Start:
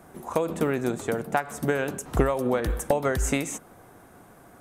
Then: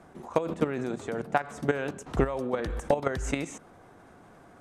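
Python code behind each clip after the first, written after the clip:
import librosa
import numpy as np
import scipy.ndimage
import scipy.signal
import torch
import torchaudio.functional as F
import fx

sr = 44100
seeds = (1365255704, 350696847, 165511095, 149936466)

y = scipy.signal.sosfilt(scipy.signal.butter(2, 6100.0, 'lowpass', fs=sr, output='sos'), x)
y = fx.hum_notches(y, sr, base_hz=60, count=2)
y = fx.level_steps(y, sr, step_db=11)
y = y * librosa.db_to_amplitude(1.5)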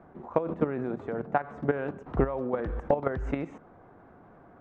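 y = scipy.signal.sosfilt(scipy.signal.butter(2, 1500.0, 'lowpass', fs=sr, output='sos'), x)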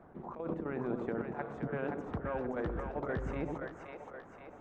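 y = fx.over_compress(x, sr, threshold_db=-32.0, ratio=-1.0)
y = fx.hpss(y, sr, part='harmonic', gain_db=-7)
y = fx.echo_split(y, sr, split_hz=460.0, low_ms=99, high_ms=524, feedback_pct=52, wet_db=-4)
y = y * librosa.db_to_amplitude(-2.5)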